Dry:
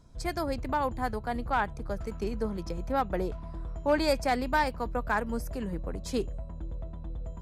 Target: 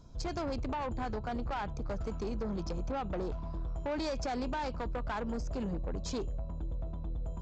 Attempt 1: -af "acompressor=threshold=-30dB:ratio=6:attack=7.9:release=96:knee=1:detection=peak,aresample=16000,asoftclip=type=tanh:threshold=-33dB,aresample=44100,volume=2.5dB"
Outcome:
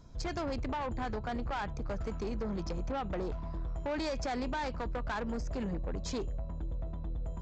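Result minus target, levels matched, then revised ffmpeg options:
2000 Hz band +2.5 dB
-af "acompressor=threshold=-30dB:ratio=6:attack=7.9:release=96:knee=1:detection=peak,equalizer=f=1.9k:t=o:w=0.46:g=-9,aresample=16000,asoftclip=type=tanh:threshold=-33dB,aresample=44100,volume=2.5dB"

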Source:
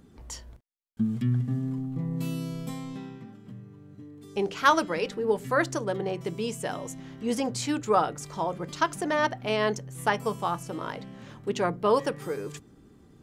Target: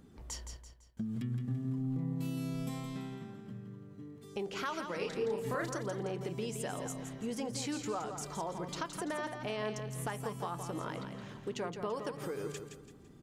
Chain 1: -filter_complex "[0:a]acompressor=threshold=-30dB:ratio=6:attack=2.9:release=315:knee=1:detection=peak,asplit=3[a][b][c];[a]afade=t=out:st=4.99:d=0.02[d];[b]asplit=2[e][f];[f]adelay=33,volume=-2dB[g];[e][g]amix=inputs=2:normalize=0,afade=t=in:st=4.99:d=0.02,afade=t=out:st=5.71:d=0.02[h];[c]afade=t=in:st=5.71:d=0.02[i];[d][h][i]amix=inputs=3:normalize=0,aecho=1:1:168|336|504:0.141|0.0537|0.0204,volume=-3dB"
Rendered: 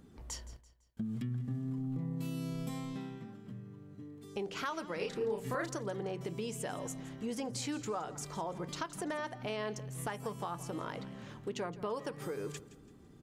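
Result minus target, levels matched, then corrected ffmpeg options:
echo-to-direct -9.5 dB
-filter_complex "[0:a]acompressor=threshold=-30dB:ratio=6:attack=2.9:release=315:knee=1:detection=peak,asplit=3[a][b][c];[a]afade=t=out:st=4.99:d=0.02[d];[b]asplit=2[e][f];[f]adelay=33,volume=-2dB[g];[e][g]amix=inputs=2:normalize=0,afade=t=in:st=4.99:d=0.02,afade=t=out:st=5.71:d=0.02[h];[c]afade=t=in:st=5.71:d=0.02[i];[d][h][i]amix=inputs=3:normalize=0,aecho=1:1:168|336|504|672:0.422|0.16|0.0609|0.0231,volume=-3dB"

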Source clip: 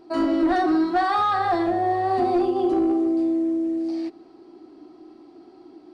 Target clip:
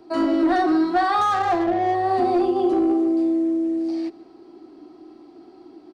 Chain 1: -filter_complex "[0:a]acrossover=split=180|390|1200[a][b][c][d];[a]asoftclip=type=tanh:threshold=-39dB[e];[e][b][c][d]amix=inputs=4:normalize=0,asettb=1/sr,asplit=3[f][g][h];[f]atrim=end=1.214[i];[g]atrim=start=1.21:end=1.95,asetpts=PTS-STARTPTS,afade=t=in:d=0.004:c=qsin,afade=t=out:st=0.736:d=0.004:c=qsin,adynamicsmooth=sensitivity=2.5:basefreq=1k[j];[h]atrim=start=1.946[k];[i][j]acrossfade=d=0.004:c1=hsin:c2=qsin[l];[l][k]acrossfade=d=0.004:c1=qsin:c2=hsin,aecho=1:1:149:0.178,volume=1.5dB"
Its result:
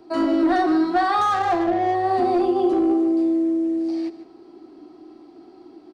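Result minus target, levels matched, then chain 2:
echo-to-direct +5.5 dB
-filter_complex "[0:a]acrossover=split=180|390|1200[a][b][c][d];[a]asoftclip=type=tanh:threshold=-39dB[e];[e][b][c][d]amix=inputs=4:normalize=0,asettb=1/sr,asplit=3[f][g][h];[f]atrim=end=1.214[i];[g]atrim=start=1.21:end=1.95,asetpts=PTS-STARTPTS,afade=t=in:d=0.004:c=qsin,afade=t=out:st=0.736:d=0.004:c=qsin,adynamicsmooth=sensitivity=2.5:basefreq=1k[j];[h]atrim=start=1.946[k];[i][j]acrossfade=d=0.004:c1=hsin:c2=qsin[l];[l][k]acrossfade=d=0.004:c1=qsin:c2=hsin,aecho=1:1:149:0.0596,volume=1.5dB"

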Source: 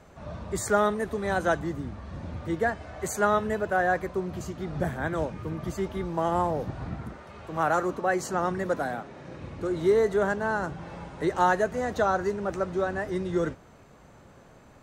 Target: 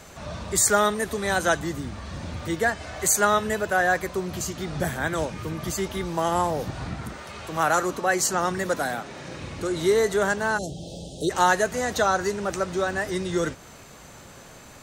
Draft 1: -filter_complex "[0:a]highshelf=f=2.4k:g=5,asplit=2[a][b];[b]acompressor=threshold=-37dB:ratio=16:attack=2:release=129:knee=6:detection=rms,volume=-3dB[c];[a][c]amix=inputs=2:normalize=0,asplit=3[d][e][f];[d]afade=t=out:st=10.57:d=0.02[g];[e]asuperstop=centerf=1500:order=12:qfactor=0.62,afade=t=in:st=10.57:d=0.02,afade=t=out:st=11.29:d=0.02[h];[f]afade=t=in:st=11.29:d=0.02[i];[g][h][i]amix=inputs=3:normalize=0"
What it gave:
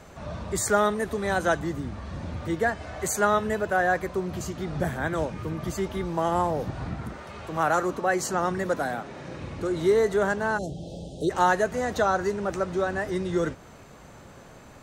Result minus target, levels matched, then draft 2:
4000 Hz band -5.0 dB
-filter_complex "[0:a]highshelf=f=2.4k:g=15.5,asplit=2[a][b];[b]acompressor=threshold=-37dB:ratio=16:attack=2:release=129:knee=6:detection=rms,volume=-3dB[c];[a][c]amix=inputs=2:normalize=0,asplit=3[d][e][f];[d]afade=t=out:st=10.57:d=0.02[g];[e]asuperstop=centerf=1500:order=12:qfactor=0.62,afade=t=in:st=10.57:d=0.02,afade=t=out:st=11.29:d=0.02[h];[f]afade=t=in:st=11.29:d=0.02[i];[g][h][i]amix=inputs=3:normalize=0"

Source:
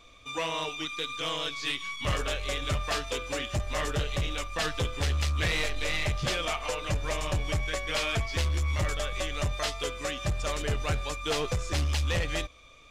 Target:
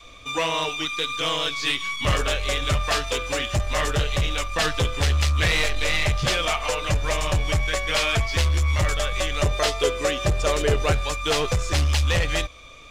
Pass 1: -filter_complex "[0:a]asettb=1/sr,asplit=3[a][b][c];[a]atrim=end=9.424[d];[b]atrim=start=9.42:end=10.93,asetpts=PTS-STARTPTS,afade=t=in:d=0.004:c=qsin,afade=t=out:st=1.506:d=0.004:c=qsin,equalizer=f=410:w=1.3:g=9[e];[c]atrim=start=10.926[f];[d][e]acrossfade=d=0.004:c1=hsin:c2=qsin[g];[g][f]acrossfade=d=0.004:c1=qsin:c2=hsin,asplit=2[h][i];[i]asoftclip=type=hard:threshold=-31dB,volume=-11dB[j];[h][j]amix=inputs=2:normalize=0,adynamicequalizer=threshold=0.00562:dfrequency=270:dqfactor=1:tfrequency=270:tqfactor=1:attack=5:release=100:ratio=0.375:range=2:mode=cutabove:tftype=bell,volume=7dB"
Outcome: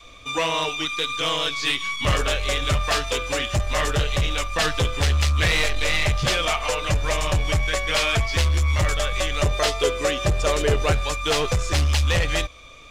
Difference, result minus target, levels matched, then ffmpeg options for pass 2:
hard clip: distortion -5 dB
-filter_complex "[0:a]asettb=1/sr,asplit=3[a][b][c];[a]atrim=end=9.424[d];[b]atrim=start=9.42:end=10.93,asetpts=PTS-STARTPTS,afade=t=in:d=0.004:c=qsin,afade=t=out:st=1.506:d=0.004:c=qsin,equalizer=f=410:w=1.3:g=9[e];[c]atrim=start=10.926[f];[d][e]acrossfade=d=0.004:c1=hsin:c2=qsin[g];[g][f]acrossfade=d=0.004:c1=qsin:c2=hsin,asplit=2[h][i];[i]asoftclip=type=hard:threshold=-42.5dB,volume=-11dB[j];[h][j]amix=inputs=2:normalize=0,adynamicequalizer=threshold=0.00562:dfrequency=270:dqfactor=1:tfrequency=270:tqfactor=1:attack=5:release=100:ratio=0.375:range=2:mode=cutabove:tftype=bell,volume=7dB"

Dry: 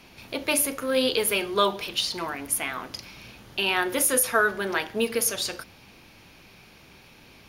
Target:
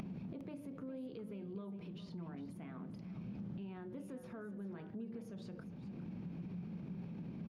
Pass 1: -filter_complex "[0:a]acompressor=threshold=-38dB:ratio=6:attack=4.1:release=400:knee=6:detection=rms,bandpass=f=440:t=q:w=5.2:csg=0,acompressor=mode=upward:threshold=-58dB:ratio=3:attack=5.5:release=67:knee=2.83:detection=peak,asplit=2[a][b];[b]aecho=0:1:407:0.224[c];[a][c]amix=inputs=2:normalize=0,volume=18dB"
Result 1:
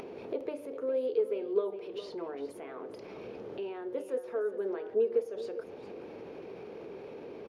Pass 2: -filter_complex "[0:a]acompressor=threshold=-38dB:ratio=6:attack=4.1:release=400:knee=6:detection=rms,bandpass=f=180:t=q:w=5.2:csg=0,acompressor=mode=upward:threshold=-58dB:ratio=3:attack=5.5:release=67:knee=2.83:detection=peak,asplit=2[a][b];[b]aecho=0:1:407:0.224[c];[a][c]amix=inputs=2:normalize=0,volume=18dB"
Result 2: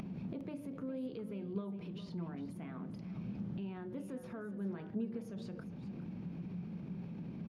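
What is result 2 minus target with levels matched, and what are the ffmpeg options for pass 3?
compressor: peak gain reduction -9 dB
-filter_complex "[0:a]acompressor=threshold=-49dB:ratio=6:attack=4.1:release=400:knee=6:detection=rms,bandpass=f=180:t=q:w=5.2:csg=0,acompressor=mode=upward:threshold=-58dB:ratio=3:attack=5.5:release=67:knee=2.83:detection=peak,asplit=2[a][b];[b]aecho=0:1:407:0.224[c];[a][c]amix=inputs=2:normalize=0,volume=18dB"

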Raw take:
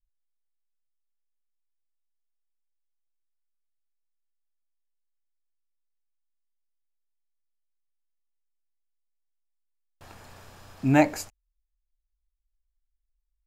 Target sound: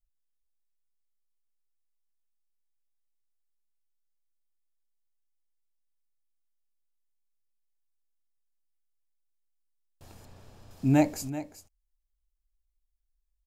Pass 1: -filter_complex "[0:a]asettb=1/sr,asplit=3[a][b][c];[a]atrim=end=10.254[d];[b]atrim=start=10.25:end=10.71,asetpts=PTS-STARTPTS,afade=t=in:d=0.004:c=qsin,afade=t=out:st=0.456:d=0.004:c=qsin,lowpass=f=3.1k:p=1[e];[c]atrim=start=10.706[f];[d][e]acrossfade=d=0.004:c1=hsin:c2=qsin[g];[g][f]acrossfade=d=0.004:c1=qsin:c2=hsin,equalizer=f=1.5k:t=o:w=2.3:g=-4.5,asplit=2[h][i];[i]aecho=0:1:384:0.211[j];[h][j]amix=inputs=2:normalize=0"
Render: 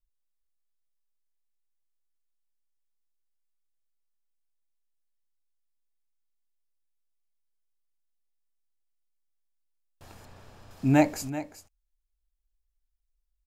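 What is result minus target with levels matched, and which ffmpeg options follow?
2000 Hz band +4.0 dB
-filter_complex "[0:a]asettb=1/sr,asplit=3[a][b][c];[a]atrim=end=10.254[d];[b]atrim=start=10.25:end=10.71,asetpts=PTS-STARTPTS,afade=t=in:d=0.004:c=qsin,afade=t=out:st=0.456:d=0.004:c=qsin,lowpass=f=3.1k:p=1[e];[c]atrim=start=10.706[f];[d][e]acrossfade=d=0.004:c1=hsin:c2=qsin[g];[g][f]acrossfade=d=0.004:c1=qsin:c2=hsin,equalizer=f=1.5k:t=o:w=2.3:g=-11,asplit=2[h][i];[i]aecho=0:1:384:0.211[j];[h][j]amix=inputs=2:normalize=0"

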